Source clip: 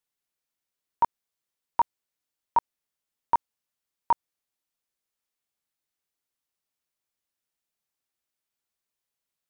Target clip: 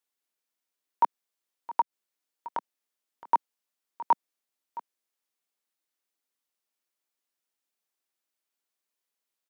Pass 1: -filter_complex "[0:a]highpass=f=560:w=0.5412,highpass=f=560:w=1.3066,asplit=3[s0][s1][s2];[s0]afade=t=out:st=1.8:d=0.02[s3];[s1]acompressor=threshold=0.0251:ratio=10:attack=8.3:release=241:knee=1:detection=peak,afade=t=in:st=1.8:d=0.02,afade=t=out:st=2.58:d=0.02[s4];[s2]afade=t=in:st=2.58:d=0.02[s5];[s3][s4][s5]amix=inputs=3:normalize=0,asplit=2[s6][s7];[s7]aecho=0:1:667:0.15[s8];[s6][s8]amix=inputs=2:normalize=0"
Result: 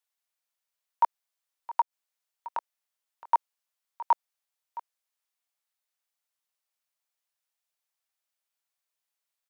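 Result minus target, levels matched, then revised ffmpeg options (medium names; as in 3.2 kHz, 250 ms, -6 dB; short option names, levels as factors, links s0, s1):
250 Hz band -18.0 dB
-filter_complex "[0:a]highpass=f=220:w=0.5412,highpass=f=220:w=1.3066,asplit=3[s0][s1][s2];[s0]afade=t=out:st=1.8:d=0.02[s3];[s1]acompressor=threshold=0.0251:ratio=10:attack=8.3:release=241:knee=1:detection=peak,afade=t=in:st=1.8:d=0.02,afade=t=out:st=2.58:d=0.02[s4];[s2]afade=t=in:st=2.58:d=0.02[s5];[s3][s4][s5]amix=inputs=3:normalize=0,asplit=2[s6][s7];[s7]aecho=0:1:667:0.15[s8];[s6][s8]amix=inputs=2:normalize=0"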